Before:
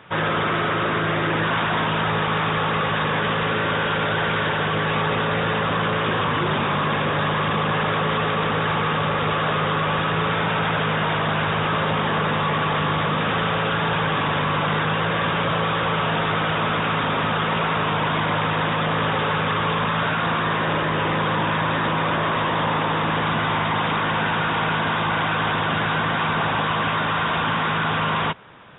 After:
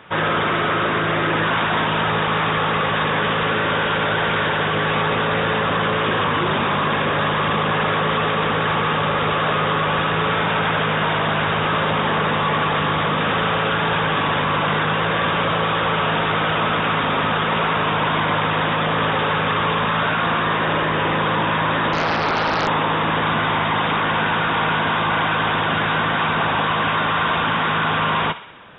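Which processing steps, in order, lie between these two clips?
parametric band 130 Hz −4.5 dB 0.68 octaves
feedback echo with a high-pass in the loop 65 ms, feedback 64%, high-pass 790 Hz, level −13 dB
0:21.93–0:22.68: highs frequency-modulated by the lows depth 0.92 ms
level +2.5 dB

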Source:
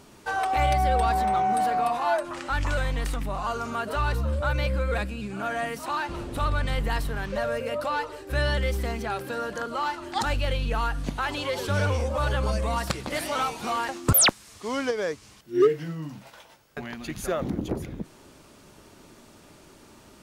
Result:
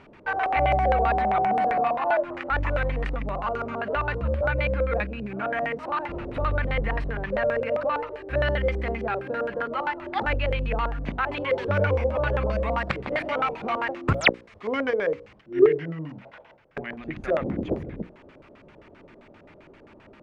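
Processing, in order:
mains-hum notches 60/120/180/240/300/360/420/480/540 Hz
auto-filter low-pass square 7.6 Hz 560–2,200 Hz

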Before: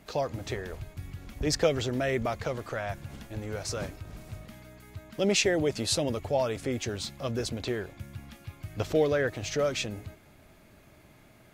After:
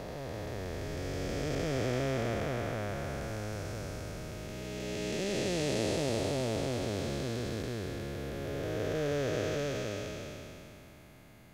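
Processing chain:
spectrum smeared in time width 1,110 ms
level +2.5 dB

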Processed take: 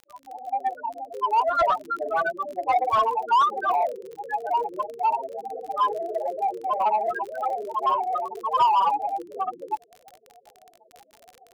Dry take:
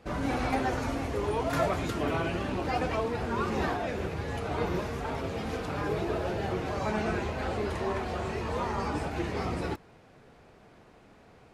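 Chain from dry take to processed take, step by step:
fade in at the beginning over 1.88 s
spectral peaks only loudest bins 8
high-pass with resonance 1,000 Hz, resonance Q 4.8
mid-hump overdrive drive 20 dB, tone 1,300 Hz, clips at −15.5 dBFS
surface crackle 35 per second −38 dBFS
level +5 dB

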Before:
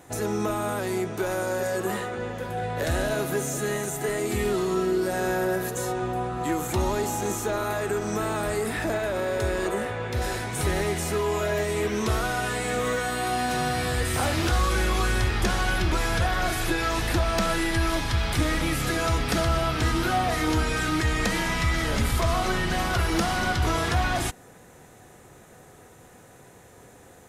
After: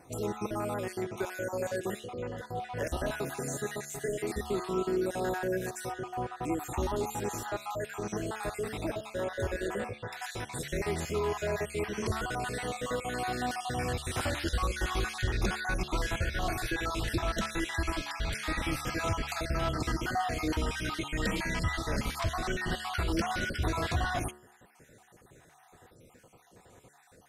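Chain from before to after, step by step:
time-frequency cells dropped at random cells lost 44%
high-shelf EQ 9,900 Hz −4.5 dB
hum removal 72.62 Hz, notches 27
level −4.5 dB

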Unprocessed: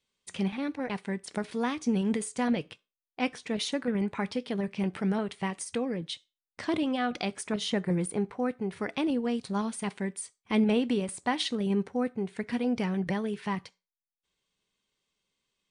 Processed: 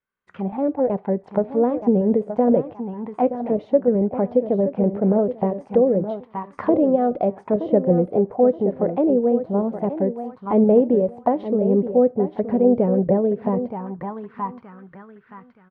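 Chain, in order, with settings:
automatic gain control gain up to 16 dB
repeating echo 923 ms, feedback 28%, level −10.5 dB
envelope-controlled low-pass 570–1,500 Hz down, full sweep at −13.5 dBFS
level −7.5 dB

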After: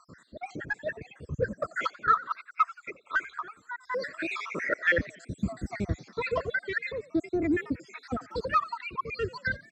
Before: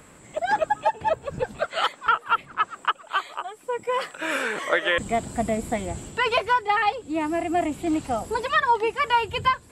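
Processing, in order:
time-frequency cells dropped at random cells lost 73%
high-pass filter 62 Hz 12 dB per octave
low-shelf EQ 120 Hz +4.5 dB
in parallel at −8.5 dB: soft clipping −28 dBFS, distortion −7 dB
on the sum: high-frequency loss of the air 91 metres
phaser with its sweep stopped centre 3,000 Hz, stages 6
on a send: echo with shifted repeats 89 ms, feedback 47%, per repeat +59 Hz, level −20.5 dB
on the sum: wow of a warped record 78 rpm, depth 100 cents
level +2.5 dB

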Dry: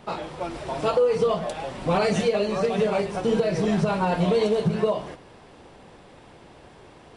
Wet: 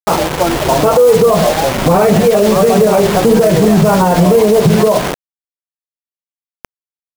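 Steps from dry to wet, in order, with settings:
low-pass filter 1,400 Hz 12 dB per octave
bit reduction 6 bits
boost into a limiter +20 dB
level −1 dB

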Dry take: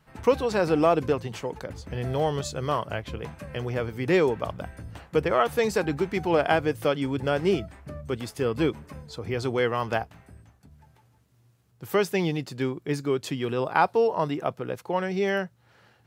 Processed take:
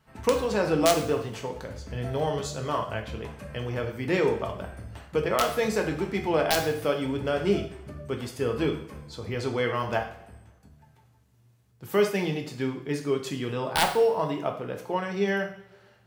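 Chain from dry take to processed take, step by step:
wrap-around overflow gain 9 dB
coupled-rooms reverb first 0.53 s, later 1.5 s, from −19 dB, DRR 2.5 dB
level −3 dB

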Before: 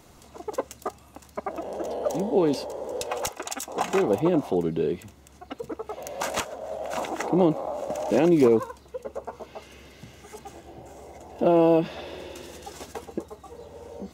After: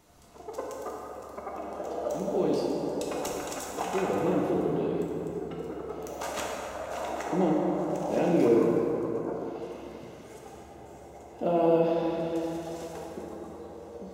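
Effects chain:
dense smooth reverb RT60 3.8 s, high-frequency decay 0.45×, DRR −3.5 dB
level −8.5 dB

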